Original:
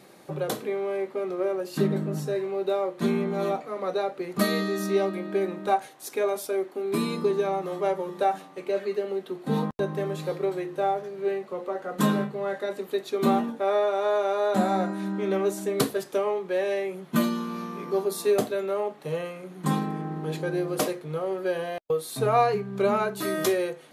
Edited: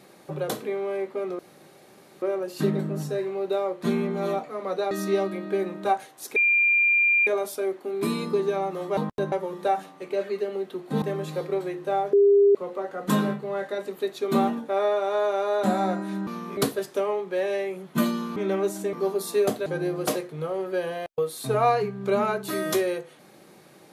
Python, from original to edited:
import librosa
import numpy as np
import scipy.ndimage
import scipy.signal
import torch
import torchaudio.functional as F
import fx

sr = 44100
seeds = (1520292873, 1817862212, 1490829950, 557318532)

y = fx.edit(x, sr, fx.insert_room_tone(at_s=1.39, length_s=0.83),
    fx.cut(start_s=4.08, length_s=0.65),
    fx.insert_tone(at_s=6.18, length_s=0.91, hz=2390.0, db=-17.0),
    fx.move(start_s=9.58, length_s=0.35, to_s=7.88),
    fx.bleep(start_s=11.04, length_s=0.42, hz=402.0, db=-13.5),
    fx.swap(start_s=15.18, length_s=0.57, other_s=17.54, other_length_s=0.3),
    fx.cut(start_s=18.57, length_s=1.81), tone=tone)